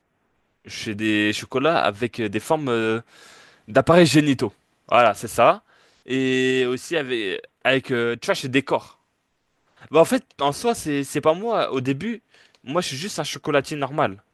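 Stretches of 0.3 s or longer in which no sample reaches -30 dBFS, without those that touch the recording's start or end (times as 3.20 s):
3.00–3.70 s
4.48–4.89 s
5.56–6.08 s
8.79–9.93 s
12.16–12.68 s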